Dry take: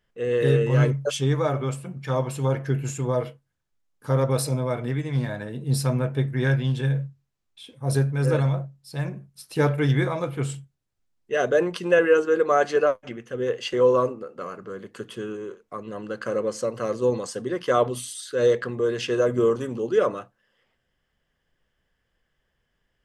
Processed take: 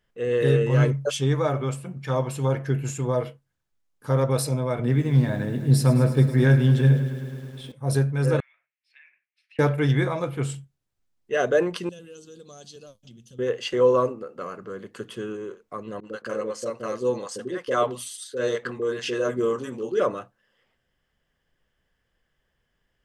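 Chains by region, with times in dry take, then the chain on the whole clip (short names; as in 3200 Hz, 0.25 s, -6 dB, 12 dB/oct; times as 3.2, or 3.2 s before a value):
4.79–7.72 HPF 110 Hz + low shelf 370 Hz +8.5 dB + lo-fi delay 0.106 s, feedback 80%, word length 8-bit, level -13 dB
8.4–9.59 tilt +2 dB/oct + compressor 8:1, threshold -36 dBFS + Butterworth band-pass 2200 Hz, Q 2.6
11.89–13.39 EQ curve 190 Hz 0 dB, 350 Hz -16 dB, 2000 Hz -26 dB, 3500 Hz +4 dB + compressor 2:1, threshold -48 dBFS
16–20 HPF 230 Hz 6 dB/oct + expander -35 dBFS + bands offset in time lows, highs 30 ms, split 530 Hz
whole clip: dry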